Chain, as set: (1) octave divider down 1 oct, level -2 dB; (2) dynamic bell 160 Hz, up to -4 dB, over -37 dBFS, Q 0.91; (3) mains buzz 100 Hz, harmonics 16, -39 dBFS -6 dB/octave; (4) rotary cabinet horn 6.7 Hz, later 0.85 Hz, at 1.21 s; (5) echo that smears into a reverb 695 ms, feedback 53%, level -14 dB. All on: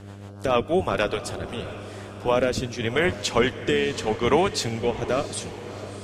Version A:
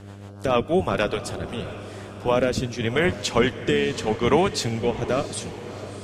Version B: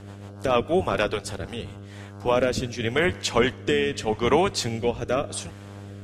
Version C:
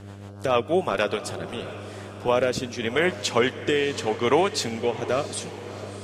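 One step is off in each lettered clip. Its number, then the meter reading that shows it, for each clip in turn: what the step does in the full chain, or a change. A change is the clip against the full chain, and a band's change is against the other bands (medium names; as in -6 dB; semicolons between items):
2, 125 Hz band +2.5 dB; 5, echo-to-direct -12.5 dB to none; 1, 125 Hz band -3.0 dB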